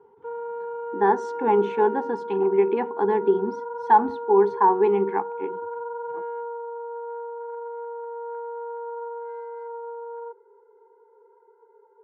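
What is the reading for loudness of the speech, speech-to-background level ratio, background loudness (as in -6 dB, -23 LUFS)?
-22.0 LUFS, 12.0 dB, -34.0 LUFS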